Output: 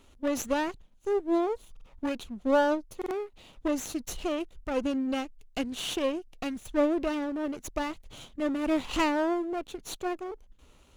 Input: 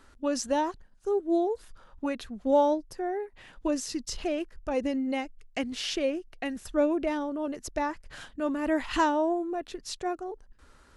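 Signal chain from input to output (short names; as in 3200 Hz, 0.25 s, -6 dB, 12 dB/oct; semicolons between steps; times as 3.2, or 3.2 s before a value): minimum comb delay 0.3 ms; stuck buffer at 1.72/2.97, samples 2048, times 2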